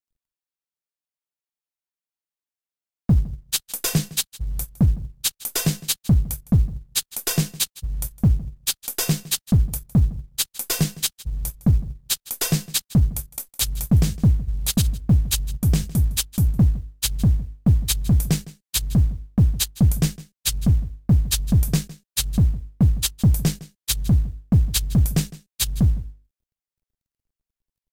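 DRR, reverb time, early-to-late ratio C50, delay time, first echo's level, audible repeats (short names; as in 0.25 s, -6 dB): none, none, none, 0.159 s, -19.5 dB, 1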